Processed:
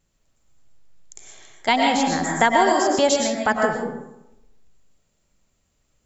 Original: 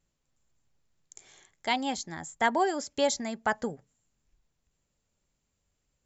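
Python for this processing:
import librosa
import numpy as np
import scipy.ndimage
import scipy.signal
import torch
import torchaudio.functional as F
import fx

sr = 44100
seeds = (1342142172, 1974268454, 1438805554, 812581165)

y = fx.rev_freeverb(x, sr, rt60_s=0.89, hf_ratio=0.55, predelay_ms=75, drr_db=0.0)
y = fx.band_squash(y, sr, depth_pct=70, at=(1.68, 2.99))
y = y * librosa.db_to_amplitude(7.0)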